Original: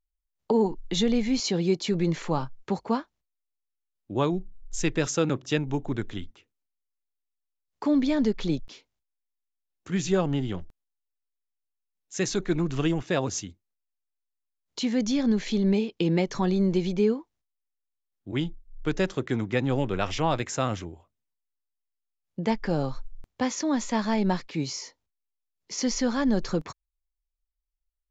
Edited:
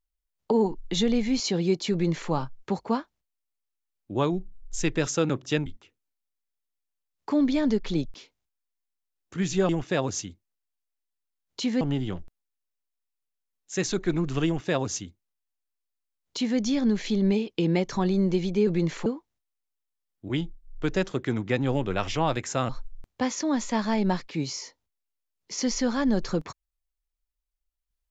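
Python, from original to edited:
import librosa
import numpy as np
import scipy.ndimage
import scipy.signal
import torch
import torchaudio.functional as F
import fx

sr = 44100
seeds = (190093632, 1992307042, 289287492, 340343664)

y = fx.edit(x, sr, fx.duplicate(start_s=1.92, length_s=0.39, to_s=17.09),
    fx.cut(start_s=5.66, length_s=0.54),
    fx.duplicate(start_s=12.88, length_s=2.12, to_s=10.23),
    fx.cut(start_s=20.72, length_s=2.17), tone=tone)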